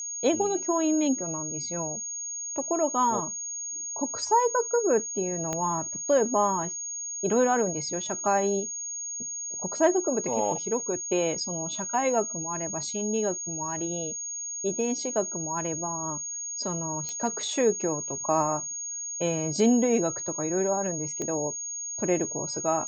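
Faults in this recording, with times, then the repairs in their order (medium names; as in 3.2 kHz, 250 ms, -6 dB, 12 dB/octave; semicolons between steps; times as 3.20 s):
whine 6.6 kHz -32 dBFS
5.53 s: pop -16 dBFS
17.09 s: pop -20 dBFS
21.22 s: pop -19 dBFS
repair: de-click; band-stop 6.6 kHz, Q 30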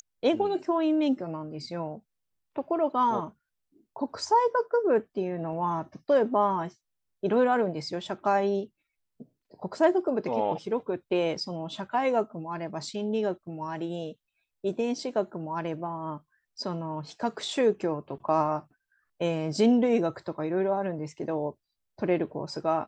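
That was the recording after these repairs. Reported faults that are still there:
5.53 s: pop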